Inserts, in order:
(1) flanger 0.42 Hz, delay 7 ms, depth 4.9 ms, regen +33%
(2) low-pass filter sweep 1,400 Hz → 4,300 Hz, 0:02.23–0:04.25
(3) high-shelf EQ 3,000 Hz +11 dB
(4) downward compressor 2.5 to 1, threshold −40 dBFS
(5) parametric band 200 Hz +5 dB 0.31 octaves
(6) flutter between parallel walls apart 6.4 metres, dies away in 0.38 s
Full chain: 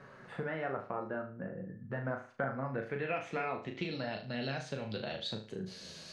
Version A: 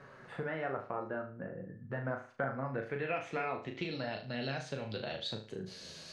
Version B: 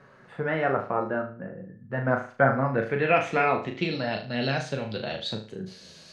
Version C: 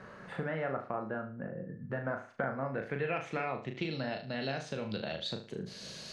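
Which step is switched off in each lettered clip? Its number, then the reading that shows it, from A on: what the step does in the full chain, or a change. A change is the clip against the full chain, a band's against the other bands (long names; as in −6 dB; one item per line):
5, change in momentary loudness spread +1 LU
4, average gain reduction 8.0 dB
1, change in integrated loudness +1.5 LU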